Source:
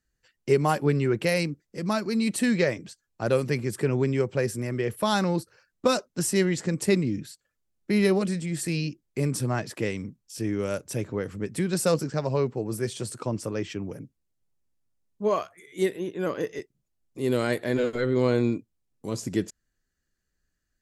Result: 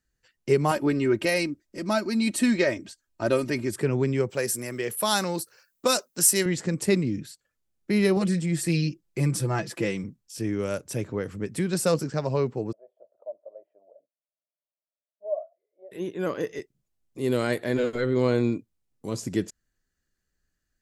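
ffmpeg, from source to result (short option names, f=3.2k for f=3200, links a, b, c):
-filter_complex "[0:a]asettb=1/sr,asplit=3[a][b][c];[a]atrim=end=0.714[d];[b]atrim=start=0.71:end=3.76,asetpts=PTS-STARTPTS,afade=t=in:d=0.004:c=qsin,afade=t=out:st=3.046:d=0.004:c=qsin,aecho=1:1:3.2:0.65,atrim=end_sample=134505[e];[c]atrim=start=3.756[f];[d][e]acrossfade=d=0.004:c1=hsin:c2=qsin[g];[g][f]acrossfade=d=0.004:c1=qsin:c2=hsin,asettb=1/sr,asplit=3[h][i][j];[h]atrim=end=4.304[k];[i]atrim=start=4.3:end=6.46,asetpts=PTS-STARTPTS,afade=t=in:d=0.004:c=qsin,afade=t=out:st=2.156:d=0.004:c=qsin,aemphasis=mode=production:type=bsi[l];[j]atrim=start=6.456[m];[k][l]acrossfade=d=0.004:c1=hsin:c2=qsin[n];[n][m]acrossfade=d=0.004:c1=qsin:c2=hsin,asettb=1/sr,asplit=3[o][p][q];[o]atrim=end=8.164[r];[p]atrim=start=8.16:end=10.04,asetpts=PTS-STARTPTS,afade=t=in:d=0.004:c=qsin,afade=t=out:st=1.876:d=0.004:c=qsin,aecho=1:1:5.9:0.65,atrim=end_sample=82908[s];[q]atrim=start=10.036[t];[r][s]acrossfade=d=0.004:c1=hsin:c2=qsin[u];[u][t]acrossfade=d=0.004:c1=qsin:c2=hsin,asplit=3[v][w][x];[v]afade=t=out:st=12.71:d=0.02[y];[w]asuperpass=centerf=620:order=4:qfactor=5.6,afade=t=in:st=12.71:d=0.02,afade=t=out:st=15.91:d=0.02[z];[x]afade=t=in:st=15.91:d=0.02[aa];[y][z][aa]amix=inputs=3:normalize=0"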